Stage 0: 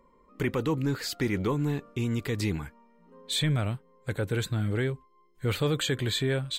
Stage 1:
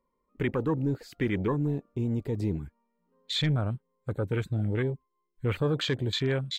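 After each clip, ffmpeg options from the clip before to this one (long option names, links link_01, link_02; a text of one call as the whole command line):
ffmpeg -i in.wav -af "afwtdn=0.0178" out.wav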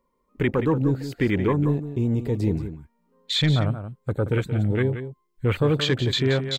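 ffmpeg -i in.wav -af "aecho=1:1:177:0.299,volume=6dB" out.wav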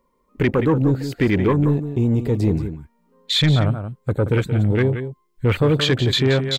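ffmpeg -i in.wav -af "asoftclip=type=tanh:threshold=-14dB,volume=5.5dB" out.wav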